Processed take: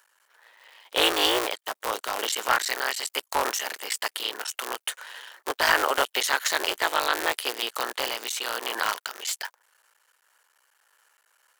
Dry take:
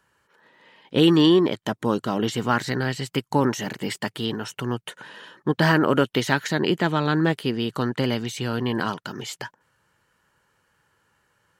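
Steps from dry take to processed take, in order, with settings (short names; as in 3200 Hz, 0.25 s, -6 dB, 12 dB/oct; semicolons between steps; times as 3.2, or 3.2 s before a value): cycle switcher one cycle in 3, muted; Bessel high-pass 760 Hz, order 4; high shelf 6700 Hz +11 dB; hard clip -12.5 dBFS, distortion -12 dB; noise-modulated level, depth 50%; gain +5.5 dB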